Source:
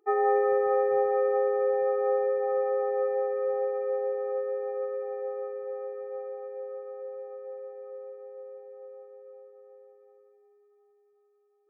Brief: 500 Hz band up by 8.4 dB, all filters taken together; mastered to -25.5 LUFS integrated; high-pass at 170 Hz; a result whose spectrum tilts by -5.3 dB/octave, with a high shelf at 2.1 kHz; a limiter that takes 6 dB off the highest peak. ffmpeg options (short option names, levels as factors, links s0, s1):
-af "highpass=170,equalizer=f=500:t=o:g=9,highshelf=f=2100:g=5,volume=0.794,alimiter=limit=0.15:level=0:latency=1"